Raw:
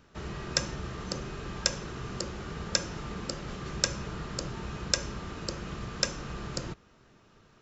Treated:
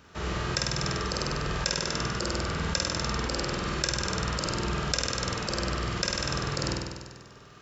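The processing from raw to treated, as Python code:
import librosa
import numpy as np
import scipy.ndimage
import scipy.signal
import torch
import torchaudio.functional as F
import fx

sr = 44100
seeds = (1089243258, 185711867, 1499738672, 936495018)

p1 = scipy.signal.sosfilt(scipy.signal.butter(2, 48.0, 'highpass', fs=sr, output='sos'), x)
p2 = fx.peak_eq(p1, sr, hz=200.0, db=-4.5, octaves=2.7)
p3 = fx.room_flutter(p2, sr, wall_m=8.4, rt60_s=1.3)
p4 = fx.over_compress(p3, sr, threshold_db=-35.0, ratio=-0.5)
p5 = p3 + (p4 * librosa.db_to_amplitude(1.0))
p6 = fx.dynamic_eq(p5, sr, hz=6600.0, q=1.6, threshold_db=-42.0, ratio=4.0, max_db=-4)
y = p6 * librosa.db_to_amplitude(-1.0)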